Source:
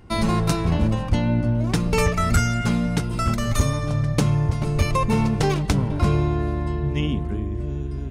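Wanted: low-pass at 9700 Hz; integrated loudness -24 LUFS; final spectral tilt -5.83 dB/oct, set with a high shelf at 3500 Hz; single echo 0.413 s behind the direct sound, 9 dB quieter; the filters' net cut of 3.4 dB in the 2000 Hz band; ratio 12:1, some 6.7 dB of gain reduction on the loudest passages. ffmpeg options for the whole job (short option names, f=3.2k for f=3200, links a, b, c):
-af "lowpass=9.7k,equalizer=f=2k:t=o:g=-6.5,highshelf=f=3.5k:g=6.5,acompressor=threshold=-21dB:ratio=12,aecho=1:1:413:0.355,volume=2.5dB"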